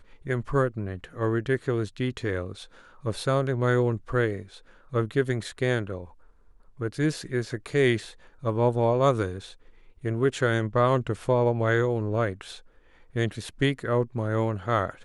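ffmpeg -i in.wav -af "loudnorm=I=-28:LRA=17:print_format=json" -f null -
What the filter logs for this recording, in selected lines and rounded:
"input_i" : "-26.9",
"input_tp" : "-9.7",
"input_lra" : "3.7",
"input_thresh" : "-37.6",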